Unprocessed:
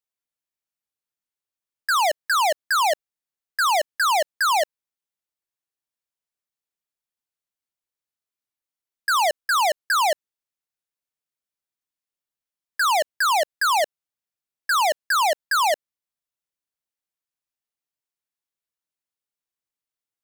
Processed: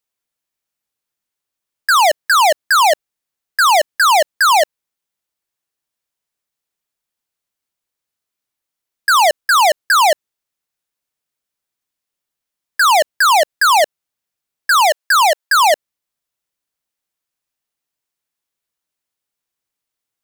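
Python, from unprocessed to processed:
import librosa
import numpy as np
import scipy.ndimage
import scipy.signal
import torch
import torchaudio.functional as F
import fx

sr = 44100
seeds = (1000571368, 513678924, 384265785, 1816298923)

y = fx.highpass(x, sr, hz=480.0, slope=12, at=(14.73, 15.54), fade=0.02)
y = y * librosa.db_to_amplitude(8.5)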